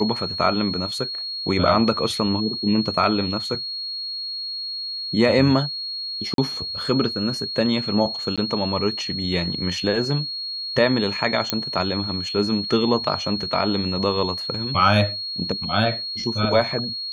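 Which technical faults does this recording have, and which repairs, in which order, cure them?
tone 4300 Hz -27 dBFS
6.34–6.38 gap 42 ms
8.36–8.38 gap 16 ms
11.5 pop -3 dBFS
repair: de-click; notch 4300 Hz, Q 30; interpolate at 6.34, 42 ms; interpolate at 8.36, 16 ms

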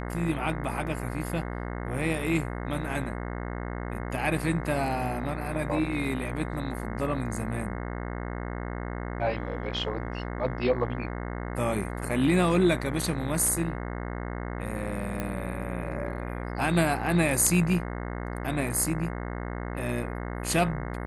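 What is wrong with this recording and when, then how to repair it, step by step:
buzz 60 Hz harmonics 36 -34 dBFS
15.2 pop -17 dBFS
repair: de-click; de-hum 60 Hz, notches 36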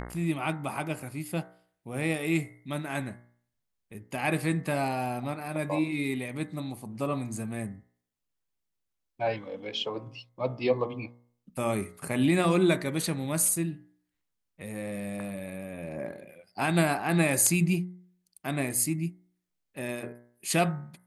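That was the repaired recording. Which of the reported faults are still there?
none

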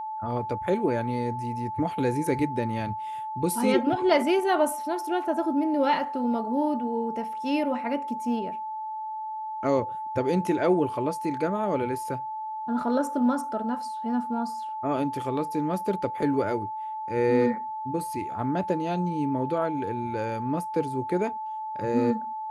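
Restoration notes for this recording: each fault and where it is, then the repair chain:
tone 870 Hz -31 dBFS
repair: notch 870 Hz, Q 30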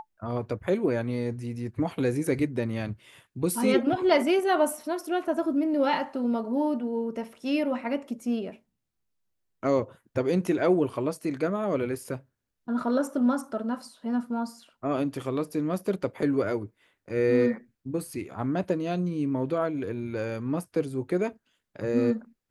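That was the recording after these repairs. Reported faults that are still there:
none

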